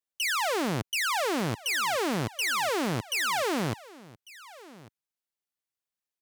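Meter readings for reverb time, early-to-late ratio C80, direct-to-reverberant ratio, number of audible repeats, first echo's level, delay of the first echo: none, none, none, 1, -20.5 dB, 1.148 s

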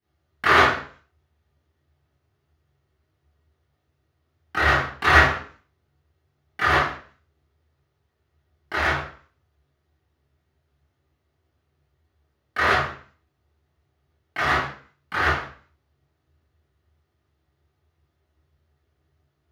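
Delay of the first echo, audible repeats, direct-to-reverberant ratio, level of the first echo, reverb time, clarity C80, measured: none, none, -13.5 dB, none, 0.45 s, 5.5 dB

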